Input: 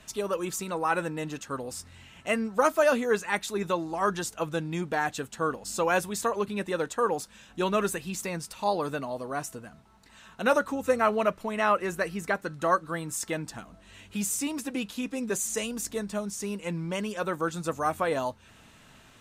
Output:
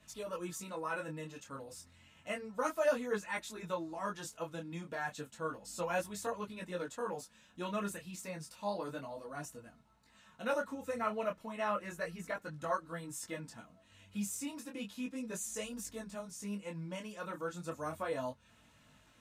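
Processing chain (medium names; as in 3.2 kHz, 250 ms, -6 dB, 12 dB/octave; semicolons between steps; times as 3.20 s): comb of notches 390 Hz; detune thickener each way 11 cents; trim -6 dB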